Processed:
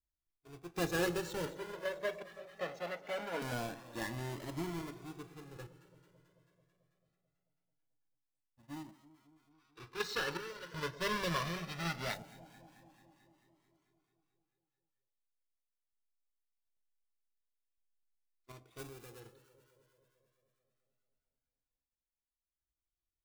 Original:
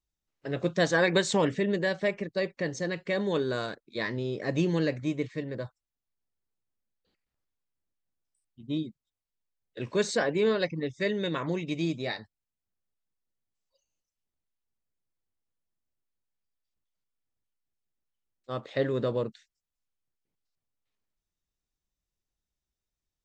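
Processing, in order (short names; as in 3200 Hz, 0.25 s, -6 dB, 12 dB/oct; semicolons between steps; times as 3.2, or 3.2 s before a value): half-waves squared off; 18.78–19.2 high shelf 6600 Hz +11.5 dB; random-step tremolo 2.7 Hz, depth 95%; 1.46–3.42 three-band isolator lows -22 dB, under 280 Hz, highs -18 dB, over 3800 Hz; in parallel at -11 dB: decimation with a swept rate 12×, swing 160% 0.28 Hz; on the sum: echo with dull and thin repeats by turns 0.11 s, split 930 Hz, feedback 82%, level -14 dB; on a send at -9 dB: reverb RT60 0.25 s, pre-delay 3 ms; 9.52–12.14 on the sum: spectral gain 880–6100 Hz +8 dB; cascading flanger rising 0.22 Hz; gain -8.5 dB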